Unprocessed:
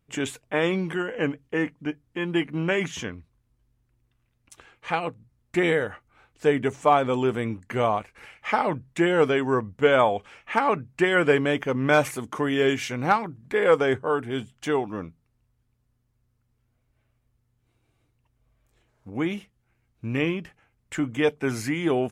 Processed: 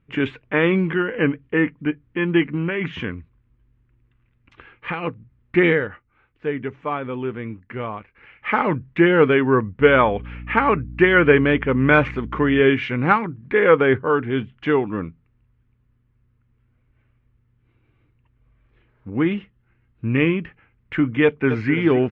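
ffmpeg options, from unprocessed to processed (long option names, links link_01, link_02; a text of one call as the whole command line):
ffmpeg -i in.wav -filter_complex "[0:a]asettb=1/sr,asplit=3[link_01][link_02][link_03];[link_01]atrim=end=2.424[link_04];[link_02]atrim=start=2.42:end=5.04,asetpts=PTS-STARTPTS,afade=type=in:duration=0.004:curve=qsin,afade=type=out:start_time=2.616:duration=0.004:curve=qsin,acompressor=threshold=-26dB:ratio=5:attack=3.2:release=140:knee=1:detection=peak[link_05];[link_03]atrim=start=5.036[link_06];[link_04][link_05]acrossfade=duration=0.004:curve1=hsin:curve2=qsin[link_07];[link_07][link_06]acrossfade=duration=0.004:curve1=qsin:curve2=hsin,asettb=1/sr,asplit=3[link_08][link_09][link_10];[link_08]atrim=end=9.804[link_11];[link_09]atrim=start=9.8:end=12.61,asetpts=PTS-STARTPTS,afade=type=in:duration=0.004:curve=qsin,afade=type=out:start_time=2.806:duration=0.004:curve=qsin,aeval=exprs='val(0)+0.00891*(sin(2*PI*60*n/s)+sin(2*PI*2*60*n/s)/2+sin(2*PI*3*60*n/s)/3+sin(2*PI*4*60*n/s)/4+sin(2*PI*5*60*n/s)/5)':channel_layout=same[link_12];[link_10]atrim=start=12.606[link_13];[link_11][link_12]acrossfade=duration=0.004:curve1=hsin:curve2=qsin[link_14];[link_14][link_13]acrossfade=duration=0.004:curve1=qsin:curve2=hsin,asettb=1/sr,asplit=3[link_15][link_16][link_17];[link_15]atrim=end=19.134[link_18];[link_16]atrim=start=19.13:end=20.1,asetpts=PTS-STARTPTS,afade=type=in:duration=0.004:curve=qsin,afade=type=out:start_time=0.966:duration=0.004:curve=qsin,bandreject=frequency=2300:width=12[link_19];[link_17]atrim=start=20.096[link_20];[link_18][link_19]acrossfade=duration=0.004:curve1=hsin:curve2=qsin[link_21];[link_21][link_20]acrossfade=duration=0.004:curve1=qsin:curve2=hsin,asplit=2[link_22][link_23];[link_23]afade=type=in:start_time=21.24:duration=0.01,afade=type=out:start_time=21.72:duration=0.01,aecho=0:1:260|520|780|1040:0.281838|0.112735|0.0450941|0.0180377[link_24];[link_22][link_24]amix=inputs=2:normalize=0,asplit=3[link_25][link_26][link_27];[link_25]atrim=end=6.03,asetpts=PTS-STARTPTS,afade=type=out:start_time=5.66:duration=0.37:silence=0.334965[link_28];[link_26]atrim=start=6.03:end=8.22,asetpts=PTS-STARTPTS,volume=-9.5dB[link_29];[link_27]atrim=start=8.22,asetpts=PTS-STARTPTS,afade=type=in:duration=0.37:silence=0.334965[link_30];[link_28][link_29][link_30]concat=n=3:v=0:a=1,lowpass=frequency=2700:width=0.5412,lowpass=frequency=2700:width=1.3066,equalizer=frequency=700:width_type=o:width=0.75:gain=-10,volume=8dB" out.wav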